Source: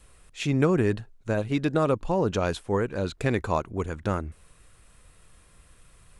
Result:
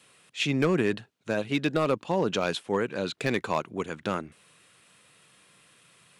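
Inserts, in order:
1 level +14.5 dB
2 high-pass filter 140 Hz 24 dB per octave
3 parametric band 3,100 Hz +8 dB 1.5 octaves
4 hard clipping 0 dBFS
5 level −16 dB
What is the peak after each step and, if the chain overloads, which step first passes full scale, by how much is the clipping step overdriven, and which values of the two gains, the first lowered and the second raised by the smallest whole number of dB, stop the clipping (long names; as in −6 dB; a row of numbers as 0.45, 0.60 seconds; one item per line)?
+6.0, +4.0, +6.0, 0.0, −16.0 dBFS
step 1, 6.0 dB
step 1 +8.5 dB, step 5 −10 dB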